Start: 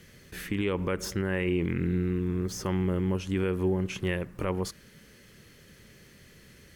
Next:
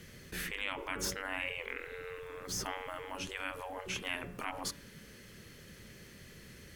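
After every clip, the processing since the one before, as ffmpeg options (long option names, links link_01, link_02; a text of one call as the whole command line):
ffmpeg -i in.wav -af "bandreject=frequency=141.4:width_type=h:width=4,bandreject=frequency=282.8:width_type=h:width=4,bandreject=frequency=424.2:width_type=h:width=4,bandreject=frequency=565.6:width_type=h:width=4,bandreject=frequency=707:width_type=h:width=4,bandreject=frequency=848.4:width_type=h:width=4,bandreject=frequency=989.8:width_type=h:width=4,bandreject=frequency=1131.2:width_type=h:width=4,bandreject=frequency=1272.6:width_type=h:width=4,bandreject=frequency=1414:width_type=h:width=4,bandreject=frequency=1555.4:width_type=h:width=4,bandreject=frequency=1696.8:width_type=h:width=4,bandreject=frequency=1838.2:width_type=h:width=4,bandreject=frequency=1979.6:width_type=h:width=4,bandreject=frequency=2121:width_type=h:width=4,bandreject=frequency=2262.4:width_type=h:width=4,bandreject=frequency=2403.8:width_type=h:width=4,bandreject=frequency=2545.2:width_type=h:width=4,bandreject=frequency=2686.6:width_type=h:width=4,bandreject=frequency=2828:width_type=h:width=4,bandreject=frequency=2969.4:width_type=h:width=4,bandreject=frequency=3110.8:width_type=h:width=4,bandreject=frequency=3252.2:width_type=h:width=4,bandreject=frequency=3393.6:width_type=h:width=4,bandreject=frequency=3535:width_type=h:width=4,afftfilt=real='re*lt(hypot(re,im),0.0708)':imag='im*lt(hypot(re,im),0.0708)':win_size=1024:overlap=0.75,volume=1dB" out.wav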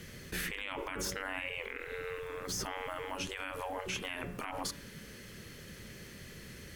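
ffmpeg -i in.wav -af "alimiter=level_in=6.5dB:limit=-24dB:level=0:latency=1:release=65,volume=-6.5dB,volume=4dB" out.wav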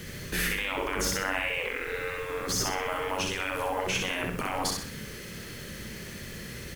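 ffmpeg -i in.wav -af "acrusher=bits=9:mix=0:aa=0.000001,aecho=1:1:63|126|189|252|315:0.668|0.261|0.102|0.0396|0.0155,volume=7dB" out.wav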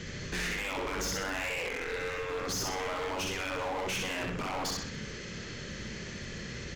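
ffmpeg -i in.wav -af "aresample=16000,aresample=44100,volume=31dB,asoftclip=hard,volume=-31dB" out.wav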